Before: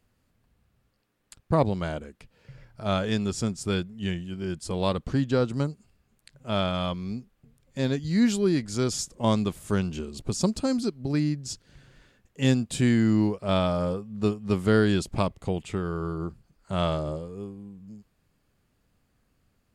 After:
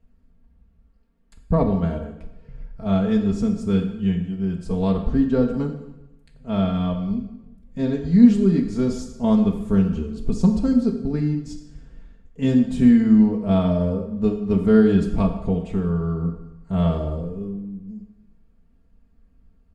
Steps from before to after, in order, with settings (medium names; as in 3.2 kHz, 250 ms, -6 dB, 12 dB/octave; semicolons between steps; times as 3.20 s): tilt EQ -3.5 dB/octave; comb 4.4 ms, depth 80%; plate-style reverb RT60 0.94 s, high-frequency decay 0.85×, DRR 3.5 dB; trim -4.5 dB